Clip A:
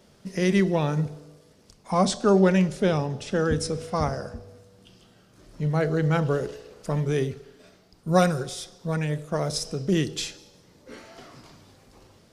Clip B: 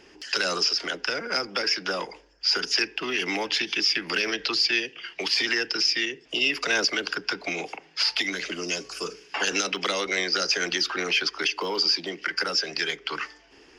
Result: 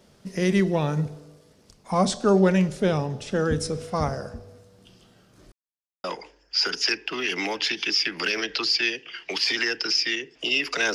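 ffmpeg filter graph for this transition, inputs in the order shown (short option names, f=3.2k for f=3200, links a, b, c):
-filter_complex "[0:a]apad=whole_dur=10.94,atrim=end=10.94,asplit=2[a][b];[a]atrim=end=5.52,asetpts=PTS-STARTPTS,afade=t=out:st=5.516:d=0.004:c=hsin[c];[b]atrim=start=5.52:end=6.04,asetpts=PTS-STARTPTS,volume=0[d];[1:a]atrim=start=1.94:end=6.84,asetpts=PTS-STARTPTS,afade=t=in:d=0.004:c=hsin[e];[c][d][e]concat=n=3:v=0:a=1"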